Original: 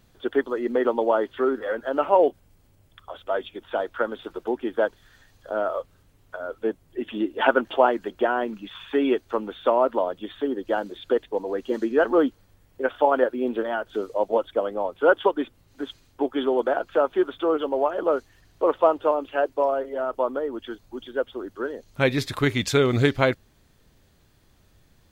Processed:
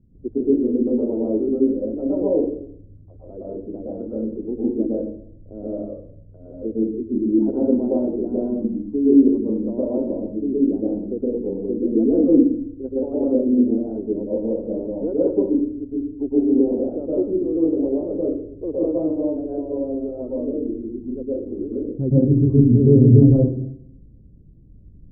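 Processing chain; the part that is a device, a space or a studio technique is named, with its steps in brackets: next room (LPF 330 Hz 24 dB/oct; reverb RT60 0.65 s, pre-delay 0.109 s, DRR -7 dB); gain +4 dB

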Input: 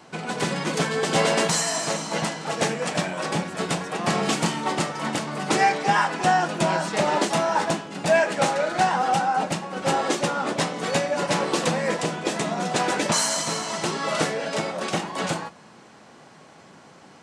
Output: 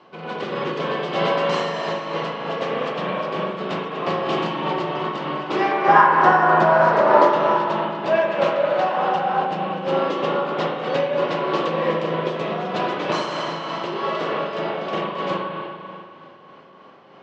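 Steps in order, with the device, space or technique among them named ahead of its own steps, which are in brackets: 5.71–7.31 EQ curve 120 Hz 0 dB, 1500 Hz +10 dB, 2900 Hz -5 dB, 5100 Hz +2 dB; combo amplifier with spring reverb and tremolo (spring tank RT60 2.4 s, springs 37/48 ms, chirp 75 ms, DRR -2.5 dB; tremolo 3.2 Hz, depth 32%; speaker cabinet 100–4500 Hz, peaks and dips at 380 Hz +8 dB, 550 Hz +8 dB, 1100 Hz +9 dB, 3000 Hz +5 dB); gain -6 dB

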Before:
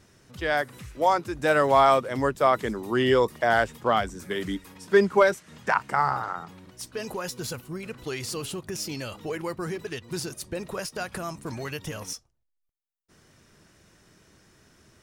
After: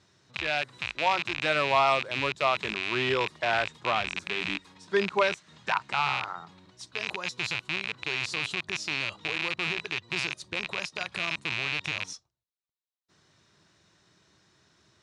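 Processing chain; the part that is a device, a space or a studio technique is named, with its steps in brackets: car door speaker with a rattle (rattling part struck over -41 dBFS, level -13 dBFS; speaker cabinet 94–7700 Hz, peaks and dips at 240 Hz -7 dB, 480 Hz -5 dB, 1000 Hz +3 dB, 3900 Hz +9 dB); gain -5.5 dB

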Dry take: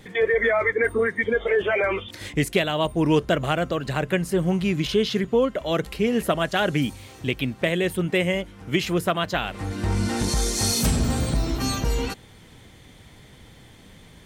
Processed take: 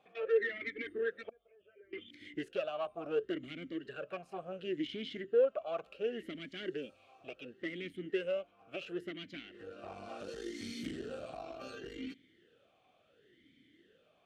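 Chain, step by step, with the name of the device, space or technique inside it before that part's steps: 1.29–1.93 passive tone stack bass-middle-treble 10-0-1; talk box (tube stage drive 19 dB, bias 0.75; vowel sweep a-i 0.7 Hz)

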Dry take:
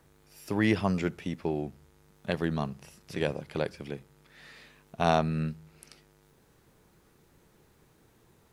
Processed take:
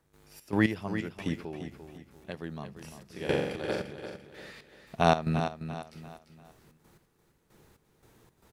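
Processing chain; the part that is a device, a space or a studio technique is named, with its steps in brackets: 2.97–3.93 flutter echo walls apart 7.4 m, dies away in 0.91 s; trance gate with a delay (step gate ".xx.x....xx." 114 bpm -12 dB; feedback echo 0.344 s, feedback 37%, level -9.5 dB); gain +2.5 dB

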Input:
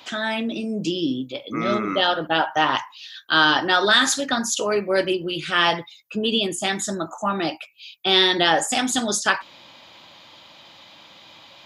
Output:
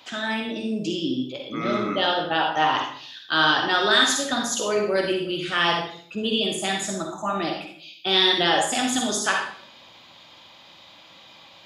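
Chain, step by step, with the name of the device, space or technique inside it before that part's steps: bathroom (reverb RT60 0.55 s, pre-delay 45 ms, DRR 1.5 dB); gain -4 dB

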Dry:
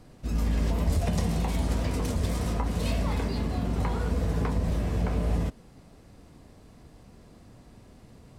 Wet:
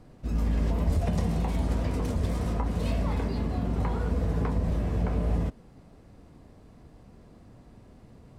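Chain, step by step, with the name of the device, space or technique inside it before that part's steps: behind a face mask (high shelf 2400 Hz -8 dB)

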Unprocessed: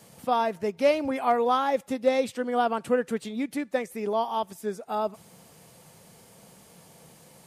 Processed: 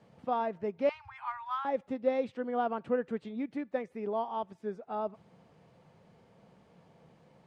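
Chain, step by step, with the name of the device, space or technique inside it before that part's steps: 0.89–1.65 Chebyshev band-stop 120–880 Hz, order 5; phone in a pocket (LPF 3600 Hz 12 dB/oct; high shelf 2100 Hz -9 dB); gain -5.5 dB

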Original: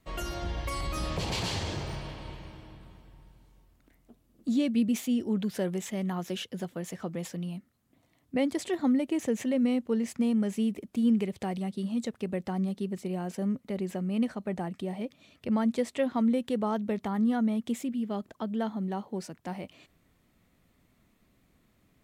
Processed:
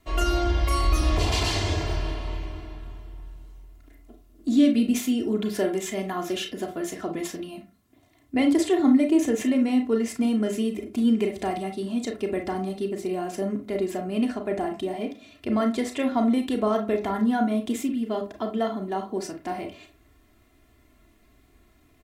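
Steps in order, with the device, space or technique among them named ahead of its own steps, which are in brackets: microphone above a desk (comb 2.9 ms, depth 73%; reverb RT60 0.35 s, pre-delay 29 ms, DRR 3.5 dB); gain +4 dB

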